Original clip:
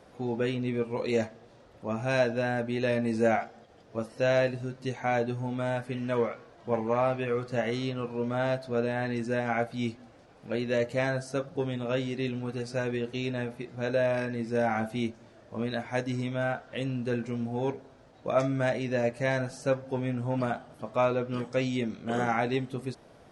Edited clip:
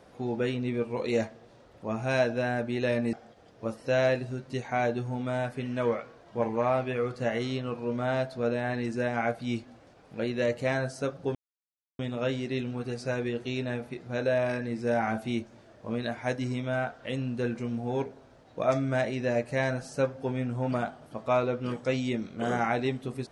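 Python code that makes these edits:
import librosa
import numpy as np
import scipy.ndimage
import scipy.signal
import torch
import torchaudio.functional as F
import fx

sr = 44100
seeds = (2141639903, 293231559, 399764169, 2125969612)

y = fx.edit(x, sr, fx.cut(start_s=3.13, length_s=0.32),
    fx.insert_silence(at_s=11.67, length_s=0.64), tone=tone)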